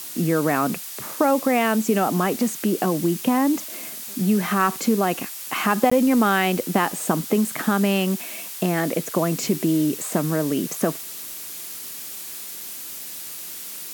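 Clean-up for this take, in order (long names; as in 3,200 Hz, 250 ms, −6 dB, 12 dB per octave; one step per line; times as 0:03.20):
repair the gap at 0:05.90, 15 ms
noise reduction from a noise print 30 dB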